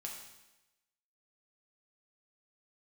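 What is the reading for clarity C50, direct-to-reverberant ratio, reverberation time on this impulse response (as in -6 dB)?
4.0 dB, -1.0 dB, 1.0 s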